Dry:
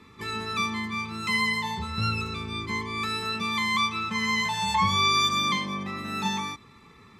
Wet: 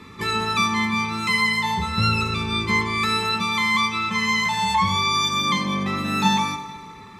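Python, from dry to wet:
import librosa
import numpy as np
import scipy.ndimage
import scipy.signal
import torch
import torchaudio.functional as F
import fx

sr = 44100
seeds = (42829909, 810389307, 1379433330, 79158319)

y = fx.rider(x, sr, range_db=4, speed_s=0.5)
y = fx.rev_fdn(y, sr, rt60_s=2.2, lf_ratio=0.75, hf_ratio=0.7, size_ms=33.0, drr_db=8.5)
y = F.gain(torch.from_numpy(y), 5.0).numpy()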